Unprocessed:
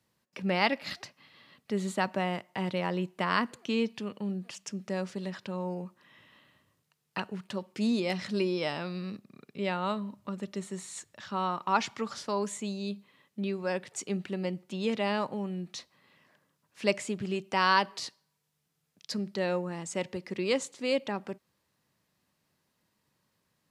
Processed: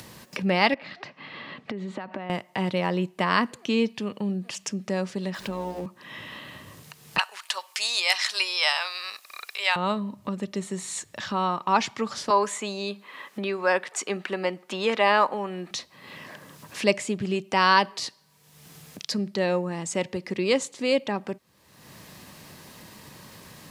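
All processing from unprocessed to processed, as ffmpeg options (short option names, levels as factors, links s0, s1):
-filter_complex "[0:a]asettb=1/sr,asplit=3[s0][s1][s2];[s0]atrim=end=0.744[s3];[s1]atrim=start=0.74:end=2.3,asetpts=PTS-STARTPTS,afade=t=in:d=0.004:c=qsin,afade=t=out:st=1.556:d=0.004:c=qsin,acompressor=threshold=0.0112:ratio=6:attack=3.2:release=140:knee=1:detection=peak,highpass=140,lowpass=2600[s4];[s2]atrim=start=2.296[s5];[s3][s4]acrossfade=d=0.004:c1=hsin:c2=qsin[s6];[s6][s5]acrossfade=d=0.004:c1=qsin:c2=hsin,asettb=1/sr,asplit=3[s7][s8][s9];[s7]atrim=end=5.344[s10];[s8]atrim=start=5.34:end=5.86,asetpts=PTS-STARTPTS,afade=t=in:d=0.004:c=qsin,afade=t=out:st=0.516:d=0.004:c=qsin,aeval=exprs='val(0)+0.5*0.00531*sgn(val(0))':c=same,tremolo=f=110:d=0.261,bandreject=f=60:t=h:w=6,bandreject=f=120:t=h:w=6,bandreject=f=180:t=h:w=6,bandreject=f=240:t=h:w=6,bandreject=f=300:t=h:w=6,bandreject=f=360:t=h:w=6,bandreject=f=420:t=h:w=6,bandreject=f=480:t=h:w=6,bandreject=f=540:t=h:w=6[s11];[s9]atrim=start=5.856[s12];[s10][s11]acrossfade=d=0.004:c1=hsin:c2=qsin[s13];[s13][s12]acrossfade=d=0.004:c1=qsin:c2=hsin,asettb=1/sr,asplit=3[s14][s15][s16];[s14]atrim=end=7.184[s17];[s15]atrim=start=7.18:end=9.76,asetpts=PTS-STARTPTS,afade=t=in:d=0.004:c=qsin,afade=t=out:st=2.576:d=0.004:c=qsin,highpass=f=850:w=0.5412,highpass=f=850:w=1.3066,highshelf=f=3400:g=9,acontrast=38[s18];[s16]atrim=start=9.756[s19];[s17][s18]acrossfade=d=0.004:c1=hsin:c2=qsin[s20];[s20][s19]acrossfade=d=0.004:c1=qsin:c2=hsin,asettb=1/sr,asplit=3[s21][s22][s23];[s21]atrim=end=12.304[s24];[s22]atrim=start=12.3:end=15.71,asetpts=PTS-STARTPTS,afade=t=in:d=0.004:c=qsin,afade=t=out:st=3.406:d=0.004:c=qsin,highpass=320,equalizer=f=1300:w=0.77:g=10[s25];[s23]atrim=start=15.706[s26];[s24][s25]acrossfade=d=0.004:c1=hsin:c2=qsin[s27];[s27][s26]acrossfade=d=0.004:c1=qsin:c2=hsin,bandreject=f=1400:w=16,acompressor=mode=upward:threshold=0.0251:ratio=2.5,volume=1.88"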